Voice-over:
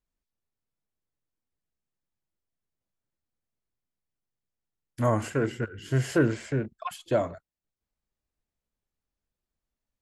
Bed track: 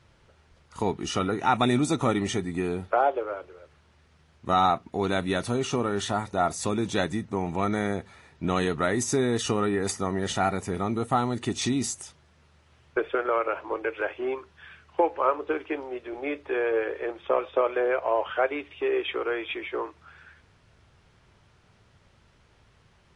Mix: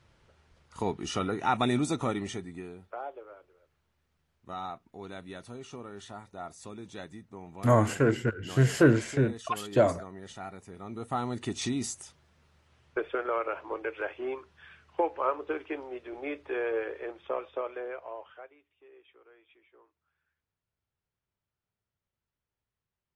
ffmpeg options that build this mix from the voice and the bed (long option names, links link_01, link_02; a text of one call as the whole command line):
ffmpeg -i stem1.wav -i stem2.wav -filter_complex "[0:a]adelay=2650,volume=2.5dB[link_01];[1:a]volume=7.5dB,afade=type=out:start_time=1.83:duration=0.92:silence=0.237137,afade=type=in:start_time=10.79:duration=0.55:silence=0.266073,afade=type=out:start_time=16.67:duration=1.88:silence=0.0530884[link_02];[link_01][link_02]amix=inputs=2:normalize=0" out.wav